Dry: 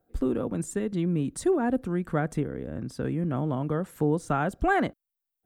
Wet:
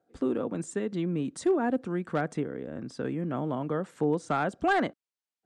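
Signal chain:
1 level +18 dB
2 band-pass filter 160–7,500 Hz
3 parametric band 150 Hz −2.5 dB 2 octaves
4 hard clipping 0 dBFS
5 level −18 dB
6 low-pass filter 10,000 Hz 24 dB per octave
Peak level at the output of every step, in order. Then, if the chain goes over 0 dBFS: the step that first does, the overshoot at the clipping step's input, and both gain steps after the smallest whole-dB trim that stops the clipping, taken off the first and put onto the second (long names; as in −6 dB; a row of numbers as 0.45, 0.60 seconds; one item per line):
+6.0, +6.0, +5.5, 0.0, −18.0, −17.5 dBFS
step 1, 5.5 dB
step 1 +12 dB, step 5 −12 dB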